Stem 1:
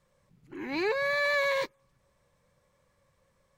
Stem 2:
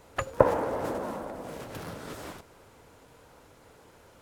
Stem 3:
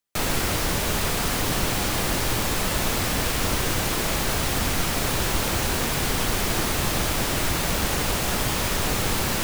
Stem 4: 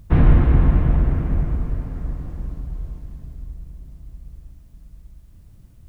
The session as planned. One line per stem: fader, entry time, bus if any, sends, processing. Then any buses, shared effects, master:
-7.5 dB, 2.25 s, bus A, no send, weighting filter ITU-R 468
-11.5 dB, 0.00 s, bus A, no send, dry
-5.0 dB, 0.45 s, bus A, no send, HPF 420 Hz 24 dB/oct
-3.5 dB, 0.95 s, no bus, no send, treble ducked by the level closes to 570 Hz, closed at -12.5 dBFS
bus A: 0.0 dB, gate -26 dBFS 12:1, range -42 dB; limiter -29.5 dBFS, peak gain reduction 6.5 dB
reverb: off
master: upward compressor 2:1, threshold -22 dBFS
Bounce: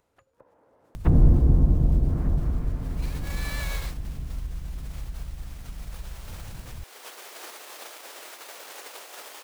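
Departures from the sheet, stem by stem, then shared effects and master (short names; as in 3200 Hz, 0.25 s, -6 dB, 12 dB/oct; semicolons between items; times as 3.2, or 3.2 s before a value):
stem 2 -11.5 dB -> -23.5 dB; stem 3: entry 0.45 s -> 0.85 s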